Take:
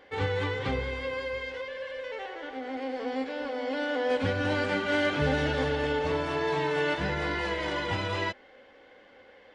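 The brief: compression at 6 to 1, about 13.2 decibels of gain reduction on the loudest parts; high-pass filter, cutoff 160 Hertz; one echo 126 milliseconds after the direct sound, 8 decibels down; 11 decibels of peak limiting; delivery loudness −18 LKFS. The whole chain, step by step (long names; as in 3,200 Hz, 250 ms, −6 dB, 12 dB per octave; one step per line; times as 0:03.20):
high-pass filter 160 Hz
downward compressor 6 to 1, threshold −38 dBFS
brickwall limiter −39.5 dBFS
single-tap delay 126 ms −8 dB
level +28.5 dB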